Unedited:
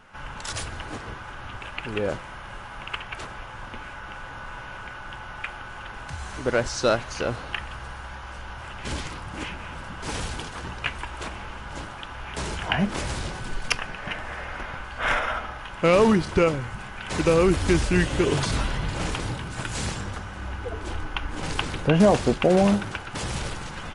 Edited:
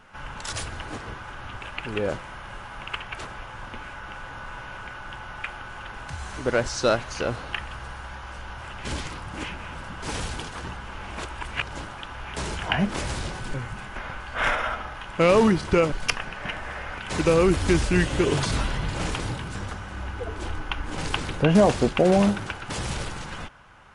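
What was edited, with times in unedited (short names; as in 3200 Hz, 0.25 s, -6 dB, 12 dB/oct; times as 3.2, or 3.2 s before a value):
10.77–11.69 reverse
13.54–14.6 swap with 16.56–16.98
19.55–20 cut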